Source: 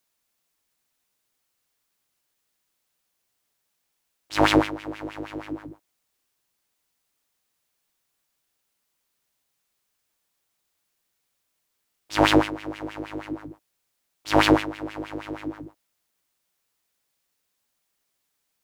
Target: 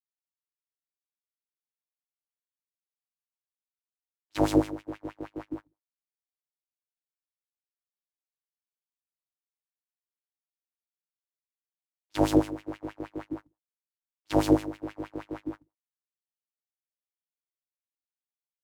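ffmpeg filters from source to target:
-filter_complex "[0:a]agate=range=0.0251:threshold=0.0224:ratio=16:detection=peak,acrossover=split=110|730|5400[s0][s1][s2][s3];[s0]acrusher=bits=5:mode=log:mix=0:aa=0.000001[s4];[s2]acompressor=threshold=0.0126:ratio=6[s5];[s4][s1][s5][s3]amix=inputs=4:normalize=0,volume=0.75"

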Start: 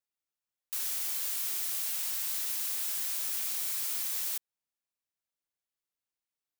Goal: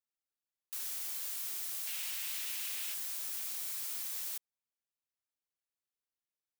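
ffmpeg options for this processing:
-filter_complex "[0:a]asettb=1/sr,asplit=3[s0][s1][s2];[s0]atrim=end=1.874[s3];[s1]atrim=start=1.87:end=2.94,asetpts=PTS-STARTPTS,afade=t=in:d=0.004:c=qsin,afade=t=out:st=1.066:d=0.004:c=qsin,equalizer=f=2600:w=1.2:g=9[s4];[s2]atrim=start=2.936[s5];[s3][s4]acrossfade=d=0.004:c1=hsin:c2=qsin[s6];[s6][s5]acrossfade=d=0.004:c1=qsin:c2=hsin,volume=0.501"

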